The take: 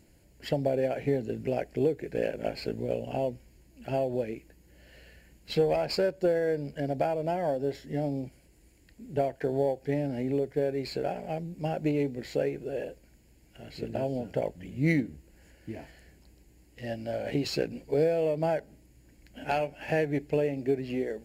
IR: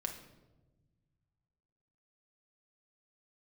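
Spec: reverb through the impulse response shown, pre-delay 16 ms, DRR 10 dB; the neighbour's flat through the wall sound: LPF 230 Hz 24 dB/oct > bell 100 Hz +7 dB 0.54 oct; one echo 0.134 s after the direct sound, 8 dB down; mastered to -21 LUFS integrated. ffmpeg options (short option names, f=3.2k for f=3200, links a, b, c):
-filter_complex "[0:a]aecho=1:1:134:0.398,asplit=2[a][b];[1:a]atrim=start_sample=2205,adelay=16[c];[b][c]afir=irnorm=-1:irlink=0,volume=-10dB[d];[a][d]amix=inputs=2:normalize=0,lowpass=f=230:w=0.5412,lowpass=f=230:w=1.3066,equalizer=f=100:t=o:w=0.54:g=7,volume=16dB"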